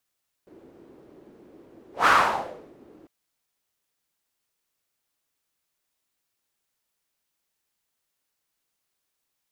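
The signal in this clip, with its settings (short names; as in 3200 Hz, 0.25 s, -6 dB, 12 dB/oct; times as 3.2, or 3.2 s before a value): whoosh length 2.60 s, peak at 1.6, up 0.16 s, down 0.72 s, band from 350 Hz, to 1300 Hz, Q 3.1, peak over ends 34 dB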